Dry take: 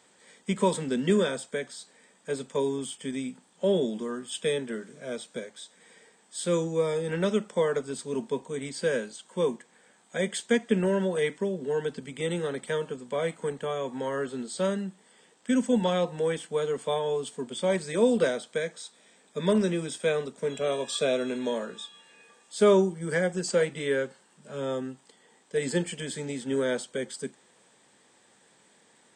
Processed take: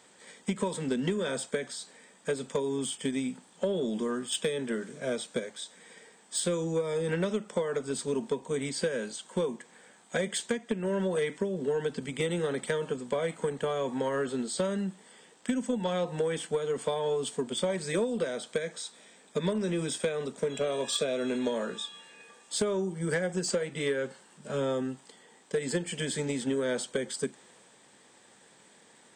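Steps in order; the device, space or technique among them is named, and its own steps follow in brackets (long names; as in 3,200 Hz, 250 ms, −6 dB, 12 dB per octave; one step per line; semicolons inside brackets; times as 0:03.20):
drum-bus smash (transient designer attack +6 dB, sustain +2 dB; downward compressor 16 to 1, threshold −27 dBFS, peak gain reduction 16.5 dB; soft clipping −21 dBFS, distortion −22 dB)
level +2.5 dB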